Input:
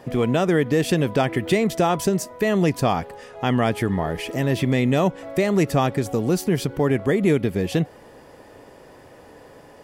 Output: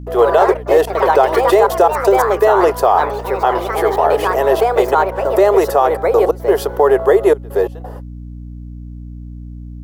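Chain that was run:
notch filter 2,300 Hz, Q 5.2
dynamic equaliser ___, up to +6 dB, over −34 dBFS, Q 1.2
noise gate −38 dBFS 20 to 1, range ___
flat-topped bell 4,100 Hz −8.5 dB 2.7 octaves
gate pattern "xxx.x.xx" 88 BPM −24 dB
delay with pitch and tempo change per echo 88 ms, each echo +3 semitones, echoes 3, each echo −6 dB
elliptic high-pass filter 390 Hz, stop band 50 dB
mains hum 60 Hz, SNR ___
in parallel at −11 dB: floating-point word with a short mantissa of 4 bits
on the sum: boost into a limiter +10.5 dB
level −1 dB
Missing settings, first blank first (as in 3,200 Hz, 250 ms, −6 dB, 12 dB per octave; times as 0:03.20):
860 Hz, −43 dB, 18 dB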